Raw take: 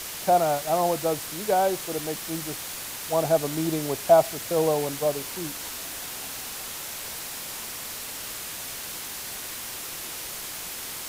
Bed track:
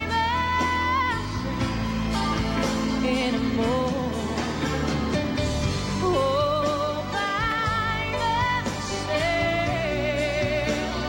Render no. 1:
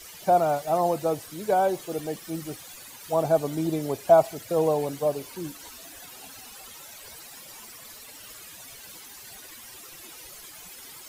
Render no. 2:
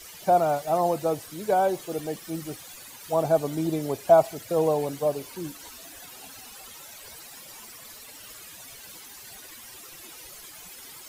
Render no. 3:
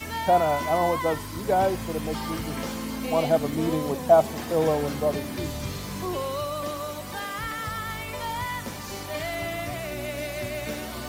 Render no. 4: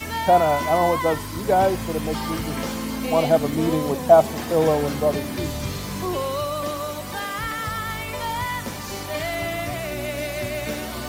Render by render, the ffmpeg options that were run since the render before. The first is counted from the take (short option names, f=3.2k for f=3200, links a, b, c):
-af "afftdn=nr=14:nf=-36"
-af anull
-filter_complex "[1:a]volume=-7.5dB[a];[0:a][a]amix=inputs=2:normalize=0"
-af "volume=4dB"